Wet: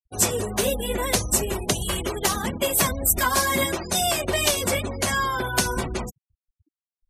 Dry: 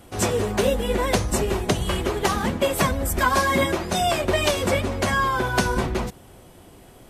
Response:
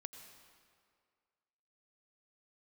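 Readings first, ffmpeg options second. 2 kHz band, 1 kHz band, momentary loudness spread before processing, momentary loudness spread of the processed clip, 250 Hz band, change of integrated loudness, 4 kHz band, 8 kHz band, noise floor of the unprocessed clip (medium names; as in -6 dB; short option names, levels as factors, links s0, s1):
-1.5 dB, -3.0 dB, 3 LU, 6 LU, -4.0 dB, -0.5 dB, +1.5 dB, +7.0 dB, -48 dBFS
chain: -af "crystalizer=i=3:c=0,afftfilt=real='re*gte(hypot(re,im),0.0447)':imag='im*gte(hypot(re,im),0.0447)':win_size=1024:overlap=0.75,volume=0.631"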